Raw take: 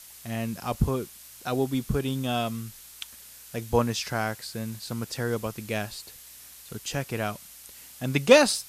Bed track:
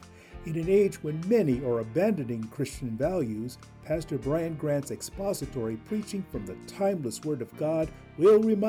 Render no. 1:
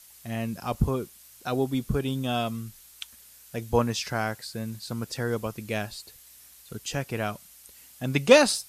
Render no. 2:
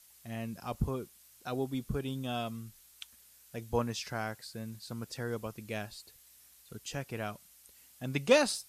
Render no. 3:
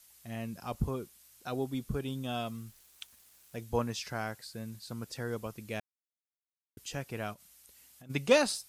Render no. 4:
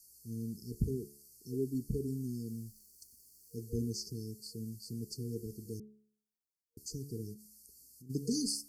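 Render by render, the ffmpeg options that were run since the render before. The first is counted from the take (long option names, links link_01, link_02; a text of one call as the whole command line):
ffmpeg -i in.wav -af "afftdn=noise_reduction=6:noise_floor=-48" out.wav
ffmpeg -i in.wav -af "volume=-8dB" out.wav
ffmpeg -i in.wav -filter_complex "[0:a]asettb=1/sr,asplit=3[link_01][link_02][link_03];[link_01]atrim=end=2.464[link_04];[link_02]atrim=start=2.46:end=3.62,asetpts=PTS-STARTPTS,afade=type=in:duration=0.004:curve=qsin,afade=type=out:start_time=1.156:duration=0.004:curve=qsin,aeval=exprs='val(0)*gte(abs(val(0)),0.00112)':channel_layout=same[link_05];[link_03]atrim=start=3.616[link_06];[link_04][link_05]acrossfade=duration=0.004:curve1=hsin:curve2=qsin[link_07];[link_07][link_06]acrossfade=duration=0.004:curve1=qsin:curve2=hsin,asplit=3[link_08][link_09][link_10];[link_08]afade=type=out:start_time=7.33:duration=0.02[link_11];[link_09]acompressor=threshold=-51dB:ratio=6:attack=3.2:release=140:knee=1:detection=peak,afade=type=in:start_time=7.33:duration=0.02,afade=type=out:start_time=8.09:duration=0.02[link_12];[link_10]afade=type=in:start_time=8.09:duration=0.02[link_13];[link_11][link_12][link_13]amix=inputs=3:normalize=0,asplit=3[link_14][link_15][link_16];[link_14]atrim=end=5.8,asetpts=PTS-STARTPTS,afade=type=out:start_time=5.796:duration=0.004:curve=hsin[link_17];[link_15]atrim=start=5.8:end=6.77,asetpts=PTS-STARTPTS,volume=0[link_18];[link_16]atrim=start=6.77,asetpts=PTS-STARTPTS,afade=type=in:duration=0.004:curve=hsin[link_19];[link_17][link_18][link_19]concat=n=3:v=0:a=1" out.wav
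ffmpeg -i in.wav -af "afftfilt=real='re*(1-between(b*sr/4096,470,4300))':imag='im*(1-between(b*sr/4096,470,4300))':win_size=4096:overlap=0.75,bandreject=frequency=71.21:width_type=h:width=4,bandreject=frequency=142.42:width_type=h:width=4,bandreject=frequency=213.63:width_type=h:width=4,bandreject=frequency=284.84:width_type=h:width=4,bandreject=frequency=356.05:width_type=h:width=4,bandreject=frequency=427.26:width_type=h:width=4,bandreject=frequency=498.47:width_type=h:width=4,bandreject=frequency=569.68:width_type=h:width=4,bandreject=frequency=640.89:width_type=h:width=4,bandreject=frequency=712.1:width_type=h:width=4,bandreject=frequency=783.31:width_type=h:width=4,bandreject=frequency=854.52:width_type=h:width=4,bandreject=frequency=925.73:width_type=h:width=4,bandreject=frequency=996.94:width_type=h:width=4,bandreject=frequency=1068.15:width_type=h:width=4,bandreject=frequency=1139.36:width_type=h:width=4,bandreject=frequency=1210.57:width_type=h:width=4,bandreject=frequency=1281.78:width_type=h:width=4,bandreject=frequency=1352.99:width_type=h:width=4,bandreject=frequency=1424.2:width_type=h:width=4,bandreject=frequency=1495.41:width_type=h:width=4,bandreject=frequency=1566.62:width_type=h:width=4,bandreject=frequency=1637.83:width_type=h:width=4,bandreject=frequency=1709.04:width_type=h:width=4,bandreject=frequency=1780.25:width_type=h:width=4,bandreject=frequency=1851.46:width_type=h:width=4,bandreject=frequency=1922.67:width_type=h:width=4,bandreject=frequency=1993.88:width_type=h:width=4,bandreject=frequency=2065.09:width_type=h:width=4,bandreject=frequency=2136.3:width_type=h:width=4,bandreject=frequency=2207.51:width_type=h:width=4" out.wav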